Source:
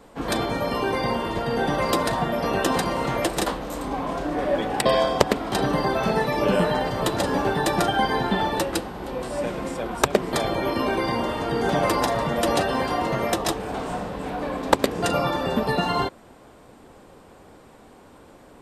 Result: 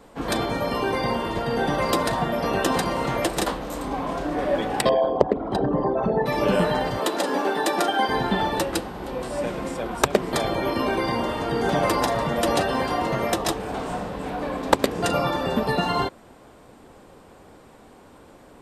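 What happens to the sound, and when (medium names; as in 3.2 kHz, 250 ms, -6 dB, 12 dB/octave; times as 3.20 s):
4.89–6.26 s: resonances exaggerated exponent 2
6.99–8.09 s: high-pass 240 Hz 24 dB/octave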